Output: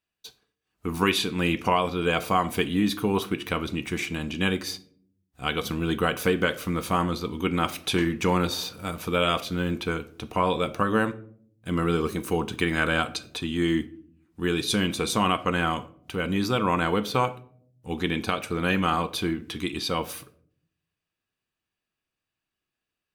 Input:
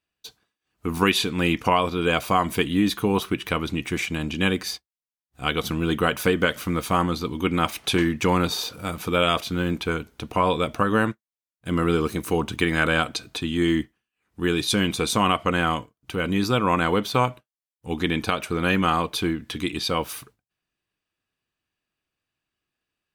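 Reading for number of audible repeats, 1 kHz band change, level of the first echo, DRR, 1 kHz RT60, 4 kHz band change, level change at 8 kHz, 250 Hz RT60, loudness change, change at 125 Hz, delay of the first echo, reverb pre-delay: none, -2.5 dB, none, 11.5 dB, 0.45 s, -3.0 dB, -3.0 dB, 0.90 s, -2.5 dB, -2.5 dB, none, 4 ms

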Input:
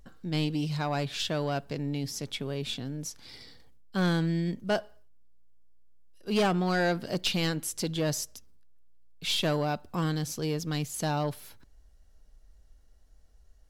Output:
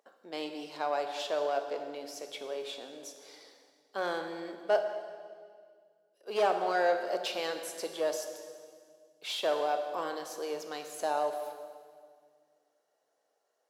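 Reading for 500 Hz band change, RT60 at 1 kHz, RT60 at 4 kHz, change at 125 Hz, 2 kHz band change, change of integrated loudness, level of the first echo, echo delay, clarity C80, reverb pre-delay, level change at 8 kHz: +1.5 dB, 1.8 s, 1.8 s, under -30 dB, -3.5 dB, -3.5 dB, none, none, 8.0 dB, 15 ms, -7.5 dB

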